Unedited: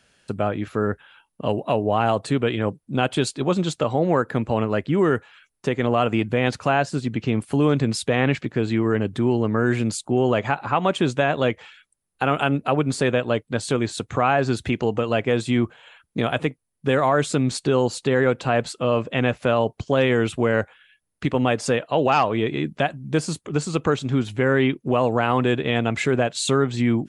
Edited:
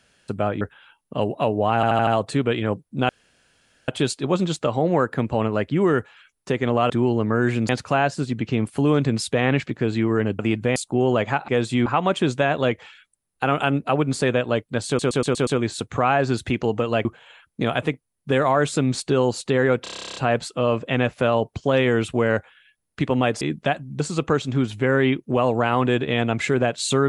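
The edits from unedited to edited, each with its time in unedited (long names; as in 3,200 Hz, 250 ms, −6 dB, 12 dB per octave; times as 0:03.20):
0:00.61–0:00.89: remove
0:02.03: stutter 0.08 s, 5 plays
0:03.05: splice in room tone 0.79 s
0:06.07–0:06.44: swap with 0:09.14–0:09.93
0:13.66: stutter 0.12 s, 6 plays
0:15.24–0:15.62: move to 0:10.65
0:18.40: stutter 0.03 s, 12 plays
0:21.65–0:22.55: remove
0:23.14–0:23.57: remove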